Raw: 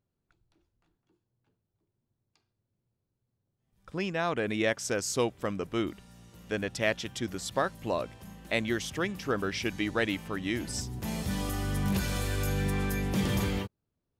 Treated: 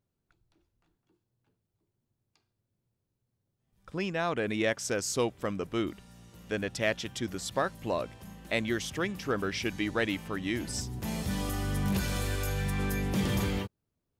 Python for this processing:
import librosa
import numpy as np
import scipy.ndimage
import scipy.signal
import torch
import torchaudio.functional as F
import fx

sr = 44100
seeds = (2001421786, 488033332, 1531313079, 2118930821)

p1 = fx.peak_eq(x, sr, hz=fx.line((12.35, 140.0), (12.78, 440.0)), db=-11.5, octaves=0.88, at=(12.35, 12.78), fade=0.02)
p2 = 10.0 ** (-26.5 / 20.0) * np.tanh(p1 / 10.0 ** (-26.5 / 20.0))
p3 = p1 + (p2 * 10.0 ** (-11.0 / 20.0))
y = p3 * 10.0 ** (-2.0 / 20.0)